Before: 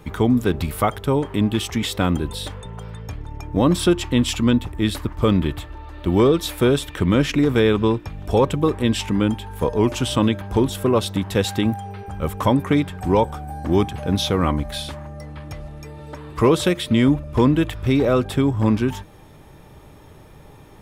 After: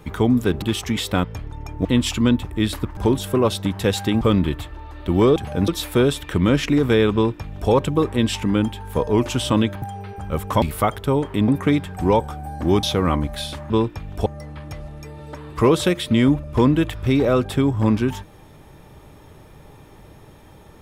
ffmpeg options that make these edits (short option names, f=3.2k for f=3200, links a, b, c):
-filter_complex "[0:a]asplit=14[a][b][c][d][e][f][g][h][i][j][k][l][m][n];[a]atrim=end=0.622[o];[b]atrim=start=1.478:end=2.102[p];[c]atrim=start=2.978:end=3.592[q];[d]atrim=start=4.068:end=5.192[r];[e]atrim=start=10.478:end=11.722[s];[f]atrim=start=5.188:end=6.342[t];[g]atrim=start=13.868:end=14.192[u];[h]atrim=start=6.338:end=10.482[v];[i]atrim=start=11.718:end=12.522[w];[j]atrim=start=0.618:end=1.482[x];[k]atrim=start=12.518:end=13.872[y];[l]atrim=start=14.188:end=15.062[z];[m]atrim=start=7.798:end=8.362[aa];[n]atrim=start=15.058[ab];[o][p]acrossfade=d=0.004:c1=hsin:c2=hsin[ac];[ac][q]acrossfade=d=0.004:c1=hsin:c2=hsin[ad];[ad][r]acrossfade=d=0.004:c1=hsin:c2=hsin[ae];[ae][s]acrossfade=d=0.004:c1=hsin:c2=hsin[af];[af][t]acrossfade=d=0.004:c1=hsin:c2=hsin[ag];[ag][u]acrossfade=d=0.004:c1=hsin:c2=hsin[ah];[ah][v]acrossfade=d=0.004:c1=hsin:c2=hsin[ai];[ai][w]acrossfade=d=0.004:c1=hsin:c2=hsin[aj];[aj][x]acrossfade=d=0.004:c1=hsin:c2=hsin[ak];[ak][y]acrossfade=d=0.004:c1=hsin:c2=hsin[al];[al][z]acrossfade=d=0.004:c1=hsin:c2=hsin[am];[am][aa]acrossfade=d=0.004:c1=hsin:c2=hsin[an];[an][ab]acrossfade=d=0.004:c1=hsin:c2=hsin"